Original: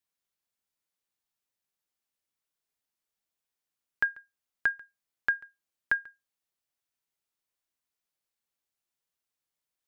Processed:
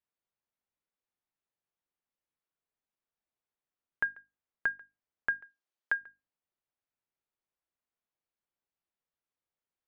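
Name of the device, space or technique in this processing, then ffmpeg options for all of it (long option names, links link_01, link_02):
phone in a pocket: -filter_complex "[0:a]bandreject=frequency=50:width_type=h:width=6,bandreject=frequency=100:width_type=h:width=6,bandreject=frequency=150:width_type=h:width=6,bandreject=frequency=200:width_type=h:width=6,bandreject=frequency=250:width_type=h:width=6,bandreject=frequency=300:width_type=h:width=6,asplit=3[link_01][link_02][link_03];[link_01]afade=type=out:start_time=5.43:duration=0.02[link_04];[link_02]bass=frequency=250:gain=-14,treble=frequency=4000:gain=12,afade=type=in:start_time=5.43:duration=0.02,afade=type=out:start_time=6:duration=0.02[link_05];[link_03]afade=type=in:start_time=6:duration=0.02[link_06];[link_04][link_05][link_06]amix=inputs=3:normalize=0,lowpass=3500,highshelf=frequency=2100:gain=-9.5"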